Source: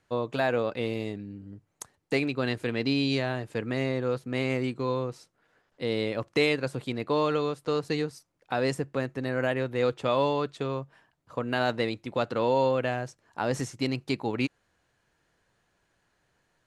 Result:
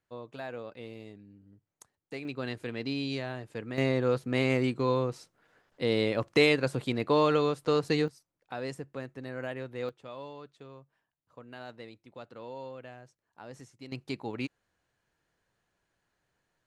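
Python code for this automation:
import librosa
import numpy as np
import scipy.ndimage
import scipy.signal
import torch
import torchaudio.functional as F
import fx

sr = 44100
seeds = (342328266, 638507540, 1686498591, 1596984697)

y = fx.gain(x, sr, db=fx.steps((0.0, -13.5), (2.25, -7.0), (3.78, 1.5), (8.08, -9.5), (9.89, -18.0), (13.92, -7.0)))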